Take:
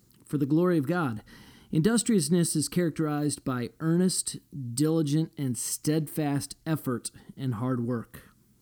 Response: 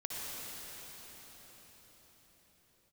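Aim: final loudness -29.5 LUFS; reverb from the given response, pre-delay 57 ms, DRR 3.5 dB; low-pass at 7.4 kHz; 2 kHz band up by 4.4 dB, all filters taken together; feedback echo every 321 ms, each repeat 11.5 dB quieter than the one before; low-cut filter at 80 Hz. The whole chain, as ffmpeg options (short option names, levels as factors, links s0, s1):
-filter_complex "[0:a]highpass=80,lowpass=7400,equalizer=f=2000:t=o:g=6,aecho=1:1:321|642|963:0.266|0.0718|0.0194,asplit=2[s0][s1];[1:a]atrim=start_sample=2205,adelay=57[s2];[s1][s2]afir=irnorm=-1:irlink=0,volume=0.473[s3];[s0][s3]amix=inputs=2:normalize=0,volume=0.708"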